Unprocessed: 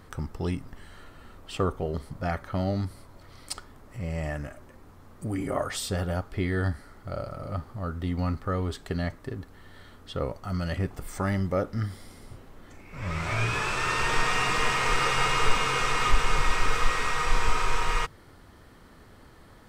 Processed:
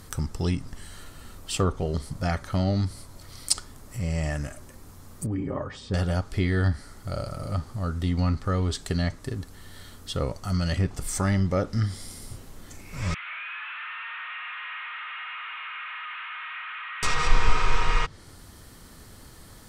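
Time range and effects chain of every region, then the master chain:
0:05.26–0:05.94: head-to-tape spacing loss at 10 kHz 41 dB + notch comb filter 690 Hz
0:13.14–0:17.03: linear delta modulator 16 kbit/s, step −36.5 dBFS + high-pass filter 1,400 Hz 24 dB per octave + high-frequency loss of the air 99 metres
whole clip: bass and treble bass +5 dB, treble +9 dB; treble cut that deepens with the level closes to 2,800 Hz, closed at −16.5 dBFS; high-shelf EQ 3,500 Hz +7.5 dB

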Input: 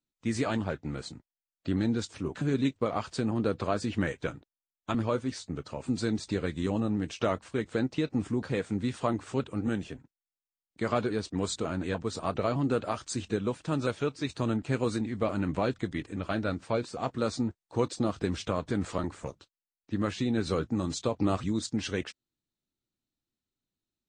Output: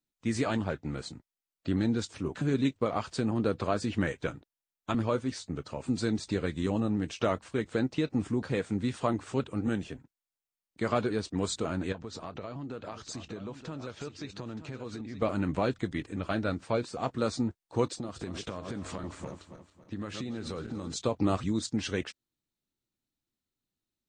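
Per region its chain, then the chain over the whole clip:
0:11.92–0:15.22: low-pass filter 7,100 Hz 24 dB per octave + downward compressor 4 to 1, threshold −37 dBFS + single-tap delay 922 ms −11 dB
0:17.91–0:20.96: feedback delay that plays each chunk backwards 138 ms, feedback 60%, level −11.5 dB + downward compressor 5 to 1, threshold −33 dBFS
whole clip: no processing

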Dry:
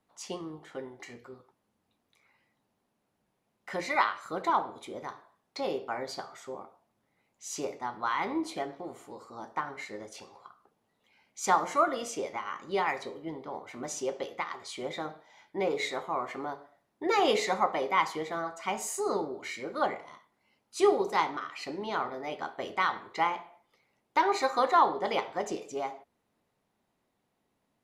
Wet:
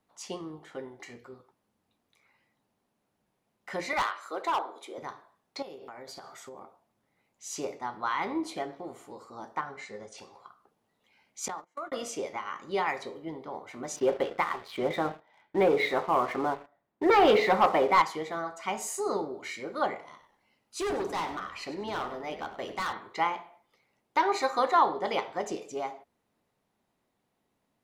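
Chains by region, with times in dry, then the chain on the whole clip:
0:03.93–0:04.98: high-pass filter 330 Hz 24 dB per octave + hard clipping −23.5 dBFS
0:05.62–0:06.62: high-shelf EQ 10,000 Hz +9.5 dB + downward compressor 16 to 1, threshold −40 dBFS
0:09.61–0:10.18: Chebyshev low-pass filter 9,200 Hz, order 5 + notch comb filter 310 Hz
0:11.48–0:11.92: noise gate −29 dBFS, range −38 dB + downward compressor 5 to 1, threshold −35 dBFS
0:13.96–0:18.02: Gaussian smoothing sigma 2.4 samples + leveller curve on the samples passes 2
0:20.09–0:22.93: gain into a clipping stage and back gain 28.5 dB + echo with shifted repeats 97 ms, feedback 37%, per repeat −100 Hz, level −12.5 dB
whole clip: no processing

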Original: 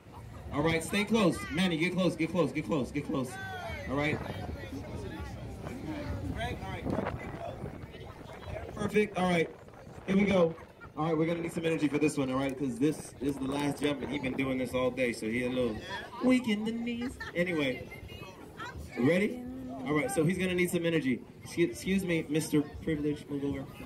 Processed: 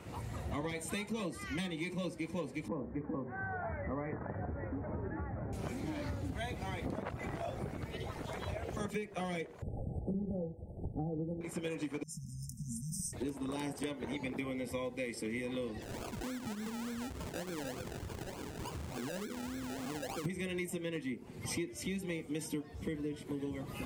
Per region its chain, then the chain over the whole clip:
0:02.68–0:05.53: Butterworth low-pass 1,800 Hz 48 dB per octave + mains-hum notches 60/120/180/240/300/360/420 Hz
0:09.62–0:11.41: linear-phase brick-wall band-stop 880–7,700 Hz + RIAA equalisation playback
0:12.03–0:13.13: downward compressor 4 to 1, threshold −31 dBFS + linear-phase brick-wall band-stop 220–5,000 Hz + comb filter 4.4 ms, depth 37%
0:15.82–0:20.26: parametric band 2,100 Hz −13 dB 0.55 octaves + sample-and-hold swept by an LFO 32×, swing 60% 3.4 Hz + downward compressor 8 to 1, threshold −42 dBFS
whole clip: downward compressor 10 to 1, threshold −40 dBFS; parametric band 7,600 Hz +4.5 dB 0.74 octaves; level +4.5 dB

